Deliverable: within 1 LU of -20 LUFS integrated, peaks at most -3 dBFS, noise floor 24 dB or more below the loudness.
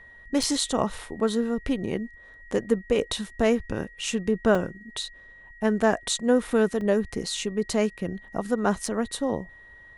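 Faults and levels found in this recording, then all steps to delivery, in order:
dropouts 4; longest dropout 3.1 ms; steady tone 1900 Hz; tone level -47 dBFS; loudness -26.5 LUFS; peak -7.5 dBFS; loudness target -20.0 LUFS
-> interpolate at 0.43/4.55/6.81/8.86, 3.1 ms; notch 1900 Hz, Q 30; gain +6.5 dB; limiter -3 dBFS

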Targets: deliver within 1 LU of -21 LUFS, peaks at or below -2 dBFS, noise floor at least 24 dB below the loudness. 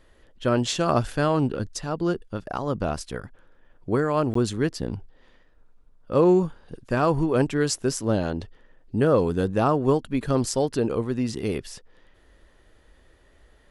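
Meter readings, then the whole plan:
dropouts 1; longest dropout 14 ms; loudness -24.5 LUFS; peak -8.5 dBFS; loudness target -21.0 LUFS
-> interpolate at 4.34, 14 ms; gain +3.5 dB

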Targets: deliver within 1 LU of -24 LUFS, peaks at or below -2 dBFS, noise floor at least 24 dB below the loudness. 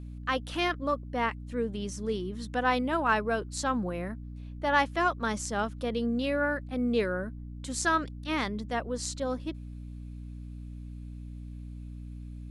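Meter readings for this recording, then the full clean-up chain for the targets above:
hum 60 Hz; harmonics up to 300 Hz; hum level -39 dBFS; loudness -30.5 LUFS; peak -12.0 dBFS; loudness target -24.0 LUFS
-> notches 60/120/180/240/300 Hz; gain +6.5 dB

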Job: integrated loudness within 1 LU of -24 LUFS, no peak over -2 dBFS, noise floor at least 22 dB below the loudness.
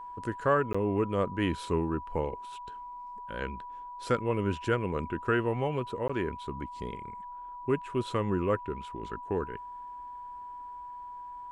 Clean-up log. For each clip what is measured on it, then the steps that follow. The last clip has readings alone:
dropouts 2; longest dropout 15 ms; steady tone 980 Hz; tone level -40 dBFS; loudness -32.0 LUFS; peak -13.5 dBFS; loudness target -24.0 LUFS
-> interpolate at 0.73/6.08, 15 ms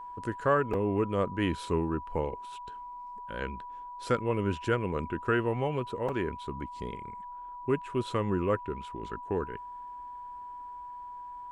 dropouts 0; steady tone 980 Hz; tone level -40 dBFS
-> notch 980 Hz, Q 30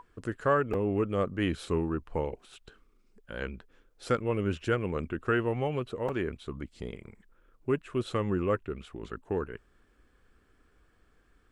steady tone none; loudness -32.0 LUFS; peak -13.5 dBFS; loudness target -24.0 LUFS
-> gain +8 dB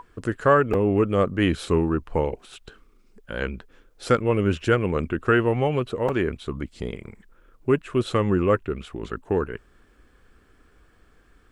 loudness -24.0 LUFS; peak -5.5 dBFS; noise floor -58 dBFS

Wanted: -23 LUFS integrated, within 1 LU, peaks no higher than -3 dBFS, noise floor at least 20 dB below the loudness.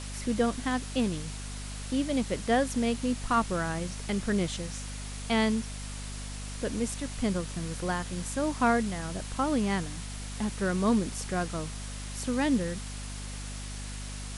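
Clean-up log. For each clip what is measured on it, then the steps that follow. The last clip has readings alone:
hum 50 Hz; harmonics up to 250 Hz; hum level -37 dBFS; noise floor -39 dBFS; noise floor target -51 dBFS; loudness -31.0 LUFS; peak -14.0 dBFS; loudness target -23.0 LUFS
-> de-hum 50 Hz, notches 5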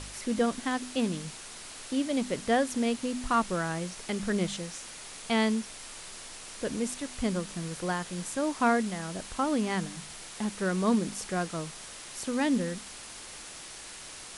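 hum none; noise floor -45 dBFS; noise floor target -51 dBFS
-> denoiser 6 dB, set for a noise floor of -45 dBFS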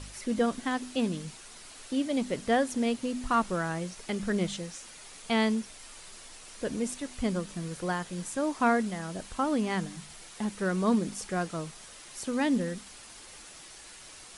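noise floor -49 dBFS; noise floor target -51 dBFS
-> denoiser 6 dB, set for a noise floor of -49 dBFS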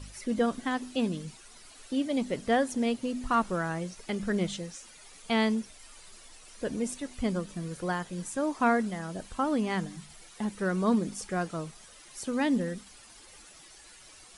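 noise floor -53 dBFS; loudness -31.0 LUFS; peak -14.5 dBFS; loudness target -23.0 LUFS
-> gain +8 dB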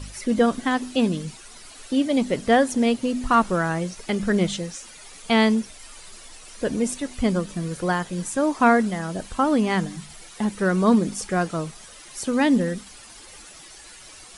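loudness -23.0 LUFS; peak -6.5 dBFS; noise floor -45 dBFS

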